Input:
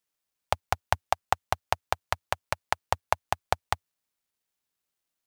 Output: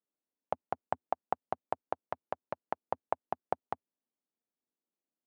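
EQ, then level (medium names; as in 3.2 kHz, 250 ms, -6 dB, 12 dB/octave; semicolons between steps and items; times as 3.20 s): ladder band-pass 290 Hz, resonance 40%; tilt EQ +2 dB/octave; +13.5 dB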